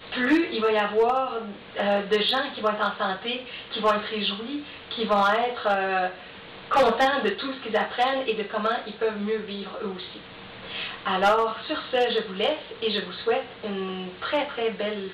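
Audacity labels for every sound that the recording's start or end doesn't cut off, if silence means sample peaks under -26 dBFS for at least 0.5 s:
6.710000	10.000000	sound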